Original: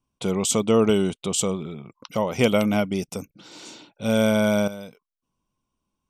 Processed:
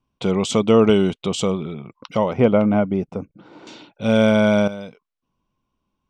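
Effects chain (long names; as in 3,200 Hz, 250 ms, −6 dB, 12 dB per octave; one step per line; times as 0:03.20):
low-pass filter 4,100 Hz 12 dB per octave, from 0:02.33 1,300 Hz, from 0:03.67 3,900 Hz
level +4.5 dB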